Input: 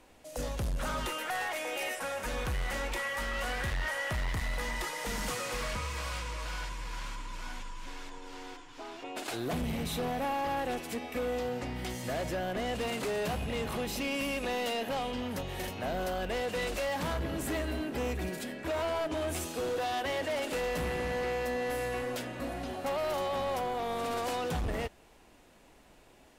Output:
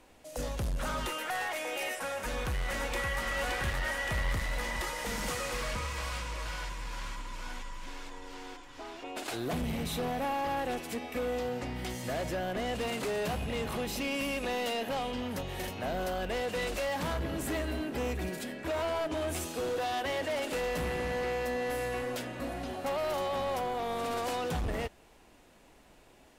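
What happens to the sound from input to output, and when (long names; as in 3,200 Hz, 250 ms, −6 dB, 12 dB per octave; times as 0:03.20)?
0:02.11–0:03.22: delay throw 570 ms, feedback 75%, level −4.5 dB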